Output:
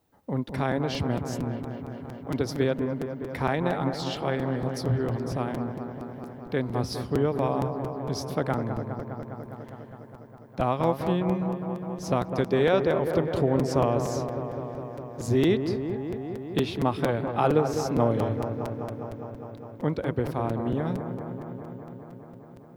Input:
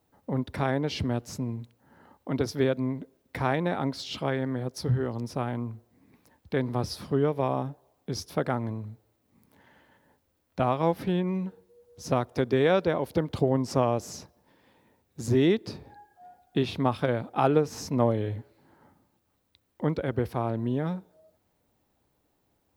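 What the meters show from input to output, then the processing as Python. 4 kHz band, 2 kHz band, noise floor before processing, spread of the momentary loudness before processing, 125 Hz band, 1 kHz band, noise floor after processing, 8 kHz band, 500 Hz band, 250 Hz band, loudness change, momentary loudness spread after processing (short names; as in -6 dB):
0.0 dB, +1.0 dB, -73 dBFS, 14 LU, +1.5 dB, +1.5 dB, -46 dBFS, +0.5 dB, +2.0 dB, +1.5 dB, +0.5 dB, 15 LU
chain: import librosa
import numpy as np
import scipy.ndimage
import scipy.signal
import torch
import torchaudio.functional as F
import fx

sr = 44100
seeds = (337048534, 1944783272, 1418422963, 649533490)

y = fx.echo_wet_lowpass(x, sr, ms=204, feedback_pct=79, hz=1600.0, wet_db=-7.5)
y = fx.buffer_crackle(y, sr, first_s=0.48, period_s=0.23, block=256, kind='repeat')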